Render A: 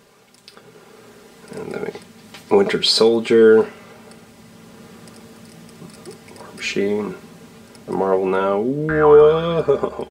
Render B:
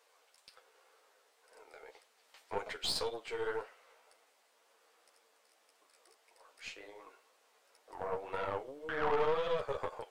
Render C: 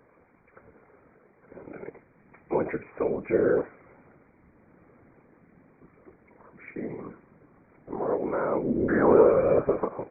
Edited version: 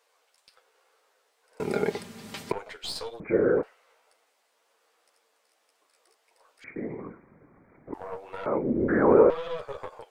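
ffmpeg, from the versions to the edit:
-filter_complex "[2:a]asplit=3[a][b][c];[1:a]asplit=5[d][e][f][g][h];[d]atrim=end=1.602[i];[0:a]atrim=start=1.598:end=2.522[j];[e]atrim=start=2.518:end=3.202[k];[a]atrim=start=3.198:end=3.632[l];[f]atrim=start=3.628:end=6.642[m];[b]atrim=start=6.638:end=7.942[n];[g]atrim=start=7.938:end=8.462[o];[c]atrim=start=8.458:end=9.302[p];[h]atrim=start=9.298[q];[i][j]acrossfade=d=0.004:c1=hsin:c2=hsin[r];[r][k]acrossfade=d=0.004:c1=hsin:c2=hsin[s];[s][l]acrossfade=d=0.004:c1=hsin:c2=hsin[t];[t][m]acrossfade=d=0.004:c1=hsin:c2=hsin[u];[u][n]acrossfade=d=0.004:c1=hsin:c2=hsin[v];[v][o]acrossfade=d=0.004:c1=hsin:c2=hsin[w];[w][p]acrossfade=d=0.004:c1=hsin:c2=hsin[x];[x][q]acrossfade=d=0.004:c1=hsin:c2=hsin"

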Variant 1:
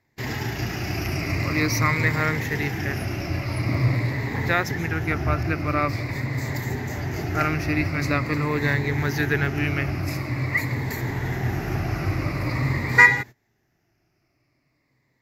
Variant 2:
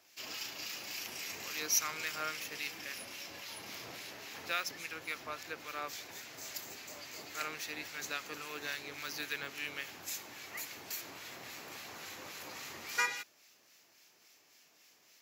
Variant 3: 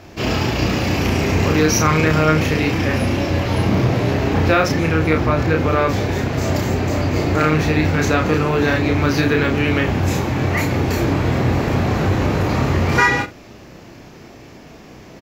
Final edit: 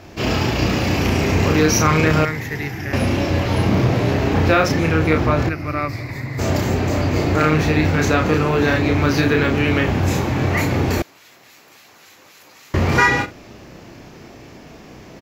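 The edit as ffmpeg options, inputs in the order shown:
-filter_complex "[0:a]asplit=2[a][b];[2:a]asplit=4[c][d][e][f];[c]atrim=end=2.252[g];[a]atrim=start=2.248:end=2.932[h];[d]atrim=start=2.928:end=5.492[i];[b]atrim=start=5.488:end=6.392[j];[e]atrim=start=6.388:end=11.022[k];[1:a]atrim=start=11.018:end=12.742[l];[f]atrim=start=12.738[m];[g][h]acrossfade=d=0.004:c1=hsin:c2=hsin[n];[n][i]acrossfade=d=0.004:c1=hsin:c2=hsin[o];[o][j]acrossfade=d=0.004:c1=hsin:c2=hsin[p];[p][k]acrossfade=d=0.004:c1=hsin:c2=hsin[q];[q][l]acrossfade=d=0.004:c1=hsin:c2=hsin[r];[r][m]acrossfade=d=0.004:c1=hsin:c2=hsin"

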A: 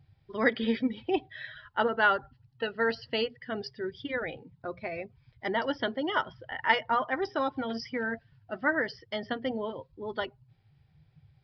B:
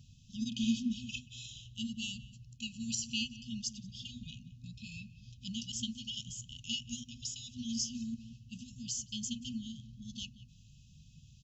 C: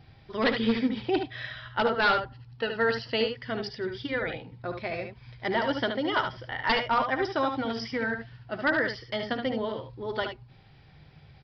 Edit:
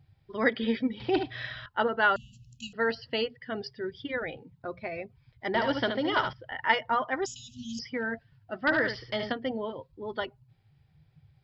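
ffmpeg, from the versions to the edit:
-filter_complex "[2:a]asplit=3[a][b][c];[1:a]asplit=2[d][e];[0:a]asplit=6[f][g][h][i][j][k];[f]atrim=end=1.002[l];[a]atrim=start=0.998:end=1.662[m];[g]atrim=start=1.658:end=2.162[n];[d]atrim=start=2.158:end=2.732[o];[h]atrim=start=2.728:end=5.542[p];[b]atrim=start=5.538:end=6.332[q];[i]atrim=start=6.328:end=7.262[r];[e]atrim=start=7.258:end=7.792[s];[j]atrim=start=7.788:end=8.672[t];[c]atrim=start=8.668:end=9.322[u];[k]atrim=start=9.318[v];[l][m]acrossfade=d=0.004:c1=hsin:c2=hsin[w];[w][n]acrossfade=d=0.004:c1=hsin:c2=hsin[x];[x][o]acrossfade=d=0.004:c1=hsin:c2=hsin[y];[y][p]acrossfade=d=0.004:c1=hsin:c2=hsin[z];[z][q]acrossfade=d=0.004:c1=hsin:c2=hsin[aa];[aa][r]acrossfade=d=0.004:c1=hsin:c2=hsin[ab];[ab][s]acrossfade=d=0.004:c1=hsin:c2=hsin[ac];[ac][t]acrossfade=d=0.004:c1=hsin:c2=hsin[ad];[ad][u]acrossfade=d=0.004:c1=hsin:c2=hsin[ae];[ae][v]acrossfade=d=0.004:c1=hsin:c2=hsin"

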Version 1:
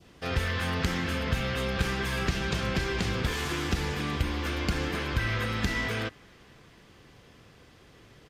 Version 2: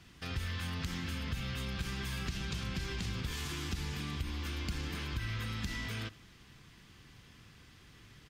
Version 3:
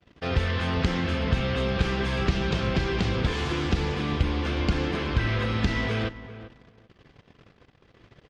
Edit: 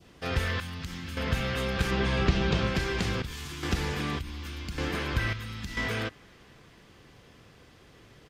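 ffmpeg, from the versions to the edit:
-filter_complex "[1:a]asplit=4[a][b][c][d];[0:a]asplit=6[e][f][g][h][i][j];[e]atrim=end=0.602[k];[a]atrim=start=0.598:end=1.172[l];[f]atrim=start=1.168:end=1.912[m];[2:a]atrim=start=1.908:end=2.672[n];[g]atrim=start=2.668:end=3.222[o];[b]atrim=start=3.218:end=3.632[p];[h]atrim=start=3.628:end=4.192[q];[c]atrim=start=4.188:end=4.782[r];[i]atrim=start=4.778:end=5.332[s];[d]atrim=start=5.328:end=5.772[t];[j]atrim=start=5.768[u];[k][l]acrossfade=d=0.004:c1=hsin:c2=hsin[v];[v][m]acrossfade=d=0.004:c1=hsin:c2=hsin[w];[w][n]acrossfade=d=0.004:c1=hsin:c2=hsin[x];[x][o]acrossfade=d=0.004:c1=hsin:c2=hsin[y];[y][p]acrossfade=d=0.004:c1=hsin:c2=hsin[z];[z][q]acrossfade=d=0.004:c1=hsin:c2=hsin[aa];[aa][r]acrossfade=d=0.004:c1=hsin:c2=hsin[ab];[ab][s]acrossfade=d=0.004:c1=hsin:c2=hsin[ac];[ac][t]acrossfade=d=0.004:c1=hsin:c2=hsin[ad];[ad][u]acrossfade=d=0.004:c1=hsin:c2=hsin"

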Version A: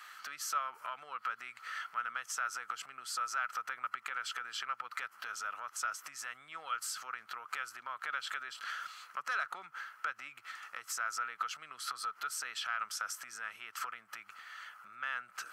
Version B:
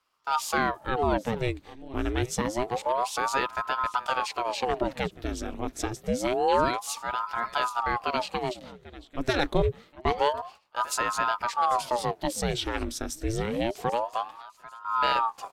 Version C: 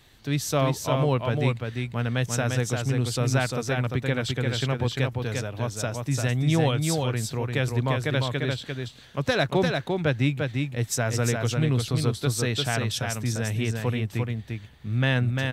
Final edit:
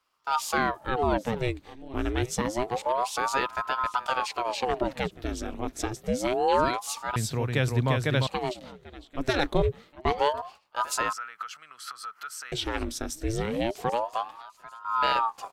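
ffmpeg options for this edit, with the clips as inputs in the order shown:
-filter_complex "[1:a]asplit=3[a][b][c];[a]atrim=end=7.162[d];[2:a]atrim=start=7.158:end=8.272[e];[b]atrim=start=8.268:end=11.132[f];[0:a]atrim=start=11.128:end=12.522[g];[c]atrim=start=12.518[h];[d][e]acrossfade=d=0.004:c1=hsin:c2=hsin[i];[i][f]acrossfade=d=0.004:c1=hsin:c2=hsin[j];[j][g]acrossfade=d=0.004:c1=hsin:c2=hsin[k];[k][h]acrossfade=d=0.004:c1=hsin:c2=hsin"

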